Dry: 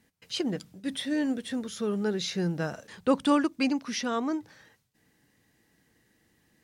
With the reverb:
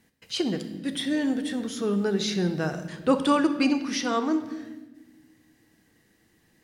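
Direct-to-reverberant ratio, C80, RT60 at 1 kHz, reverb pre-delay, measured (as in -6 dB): 7.5 dB, 12.5 dB, 1.0 s, 3 ms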